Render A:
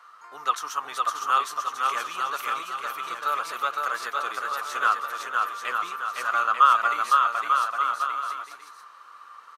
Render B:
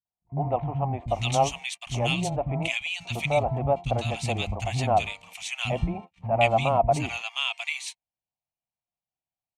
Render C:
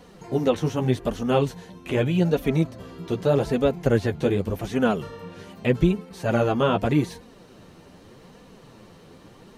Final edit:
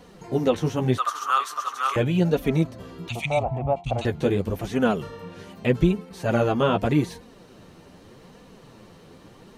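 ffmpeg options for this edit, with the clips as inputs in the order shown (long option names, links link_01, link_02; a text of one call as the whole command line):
ffmpeg -i take0.wav -i take1.wav -i take2.wav -filter_complex "[2:a]asplit=3[link_01][link_02][link_03];[link_01]atrim=end=0.982[link_04];[0:a]atrim=start=0.978:end=1.962[link_05];[link_02]atrim=start=1.958:end=3.092[link_06];[1:a]atrim=start=3.088:end=4.052[link_07];[link_03]atrim=start=4.048[link_08];[link_04][link_05]acrossfade=duration=0.004:curve1=hsin:curve2=hsin[link_09];[link_09][link_06]acrossfade=duration=0.004:curve1=hsin:curve2=hsin[link_10];[link_10][link_07]acrossfade=duration=0.004:curve1=hsin:curve2=hsin[link_11];[link_11][link_08]acrossfade=duration=0.004:curve1=hsin:curve2=hsin" out.wav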